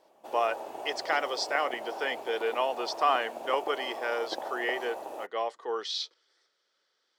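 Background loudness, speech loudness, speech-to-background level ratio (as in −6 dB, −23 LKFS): −39.5 LKFS, −31.5 LKFS, 8.0 dB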